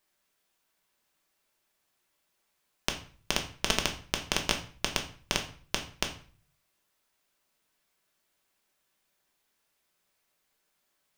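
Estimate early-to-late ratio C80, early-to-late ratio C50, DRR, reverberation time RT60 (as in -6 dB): 15.0 dB, 10.5 dB, 2.5 dB, 0.45 s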